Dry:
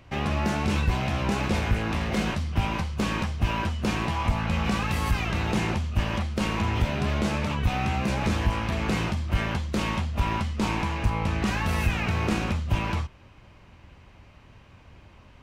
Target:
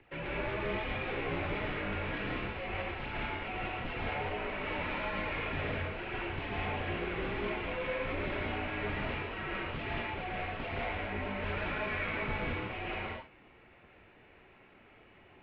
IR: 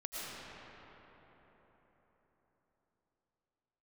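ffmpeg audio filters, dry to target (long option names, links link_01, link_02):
-filter_complex "[0:a]equalizer=frequency=1200:width_type=o:width=0.78:gain=-4.5,aphaser=in_gain=1:out_gain=1:delay=4.6:decay=0.45:speed=1.3:type=triangular,acrossover=split=230[link_01][link_02];[link_02]asoftclip=type=tanh:threshold=-29dB[link_03];[link_01][link_03]amix=inputs=2:normalize=0[link_04];[1:a]atrim=start_sample=2205,afade=type=out:start_time=0.27:duration=0.01,atrim=end_sample=12348[link_05];[link_04][link_05]afir=irnorm=-1:irlink=0,highpass=frequency=300:width_type=q:width=0.5412,highpass=frequency=300:width_type=q:width=1.307,lowpass=frequency=3400:width_type=q:width=0.5176,lowpass=frequency=3400:width_type=q:width=0.7071,lowpass=frequency=3400:width_type=q:width=1.932,afreqshift=-240"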